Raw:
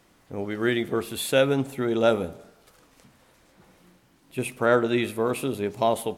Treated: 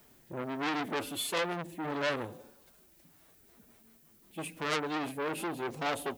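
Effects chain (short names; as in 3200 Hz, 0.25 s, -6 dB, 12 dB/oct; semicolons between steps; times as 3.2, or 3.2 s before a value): rotary speaker horn 0.75 Hz, later 6 Hz, at 2.89; formant-preserving pitch shift +4 st; vocal rider within 4 dB 2 s; added noise violet -62 dBFS; core saturation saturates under 4000 Hz; gain -2 dB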